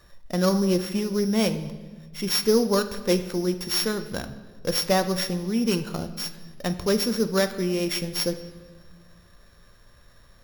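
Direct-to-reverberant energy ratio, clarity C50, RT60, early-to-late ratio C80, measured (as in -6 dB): 8.5 dB, 12.0 dB, 1.4 s, 14.0 dB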